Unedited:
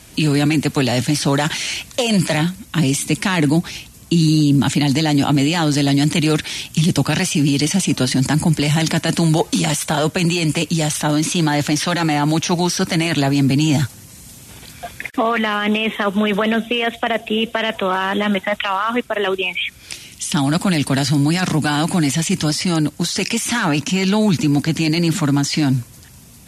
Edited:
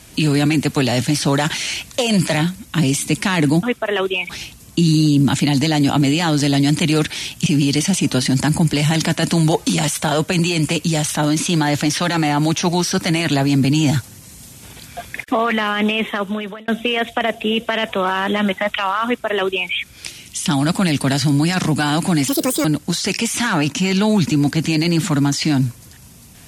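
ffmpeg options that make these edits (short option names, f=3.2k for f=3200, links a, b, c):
-filter_complex "[0:a]asplit=7[a][b][c][d][e][f][g];[a]atrim=end=3.632[h];[b]atrim=start=18.908:end=19.572[i];[c]atrim=start=3.628:end=6.802[j];[d]atrim=start=7.318:end=16.54,asetpts=PTS-STARTPTS,afade=t=out:st=8.542:d=0.68[k];[e]atrim=start=16.54:end=22.144,asetpts=PTS-STARTPTS,afade=t=in:d=0.004:c=hsin[l];[f]atrim=start=22.14:end=22.76,asetpts=PTS-STARTPTS,asetrate=74970,aresample=44100[m];[g]atrim=start=22.756[n];[h][i]acrossfade=d=0.004:c1=hsin:c2=hsin[o];[o][j]acrossfade=d=0.004:c1=hsin:c2=hsin[p];[k][l]concat=n=2:v=0:a=1[q];[p][q]acrossfade=d=0.004:c1=hsin:c2=hsin[r];[r][m]acrossfade=d=0.004:c1=hsin:c2=hsin[s];[s][n]acrossfade=d=0.004:c1=hsin:c2=hsin"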